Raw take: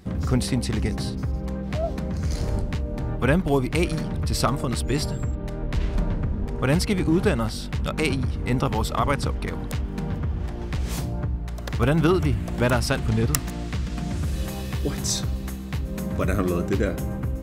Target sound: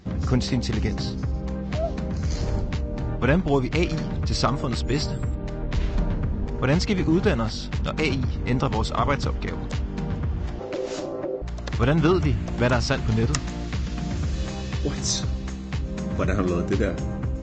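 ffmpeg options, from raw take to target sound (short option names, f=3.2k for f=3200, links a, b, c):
-filter_complex "[0:a]asettb=1/sr,asplit=3[a][b][c];[a]atrim=end=10.594[d];[b]atrim=start=10.59:end=11.42,asetpts=PTS-STARTPTS,afade=t=in:d=0.004:c=qsin,afade=t=out:st=0.826:d=0.004:c=qsin,aeval=exprs='val(0)*sin(2*PI*450*n/s)':c=same[e];[c]atrim=start=11.416[f];[d][e]acrossfade=d=0.004:c1=hsin:c2=qsin[g];[g][f]acrossfade=d=0.004:c1=qsin:c2=hsin" -ar 16000 -c:a libvorbis -b:a 32k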